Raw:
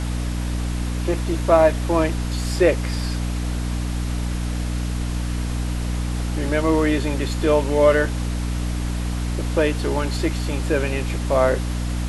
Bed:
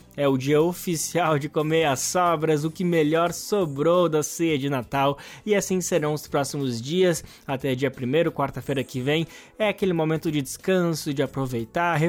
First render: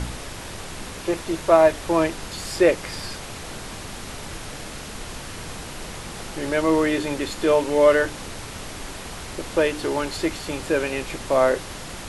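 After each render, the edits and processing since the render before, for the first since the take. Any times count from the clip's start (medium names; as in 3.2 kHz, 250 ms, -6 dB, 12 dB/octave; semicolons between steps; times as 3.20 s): de-hum 60 Hz, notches 5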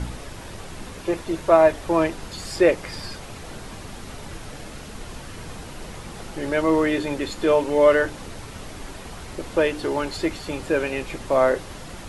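noise reduction 6 dB, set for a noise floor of -36 dBFS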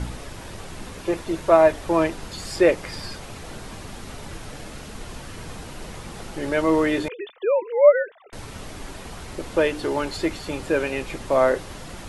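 7.08–8.33 s: formants replaced by sine waves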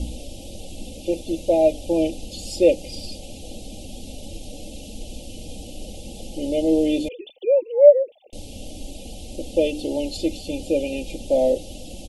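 elliptic band-stop 690–2800 Hz, stop band 50 dB; comb 3.7 ms, depth 62%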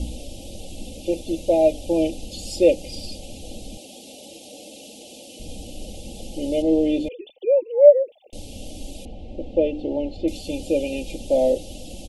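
3.77–5.40 s: high-pass 320 Hz; 6.62–7.86 s: low-pass 2.6 kHz 6 dB/octave; 9.05–10.28 s: low-pass 1.8 kHz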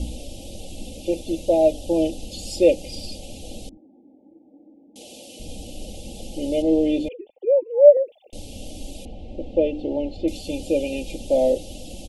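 1.46–2.20 s: band-stop 2.3 kHz, Q 5.1; 3.69–4.96 s: cascade formant filter u; 7.13–7.97 s: low-pass 1.8 kHz 24 dB/octave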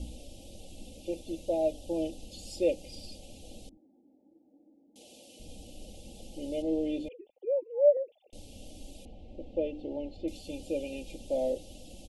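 trim -11.5 dB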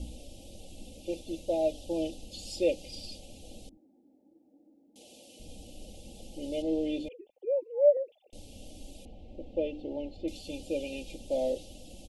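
dynamic bell 3.9 kHz, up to +5 dB, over -53 dBFS, Q 0.77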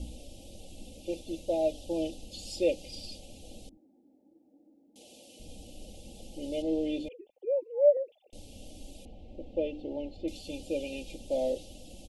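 no audible change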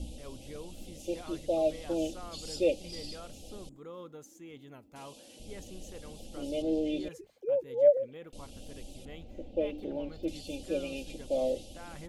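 add bed -26 dB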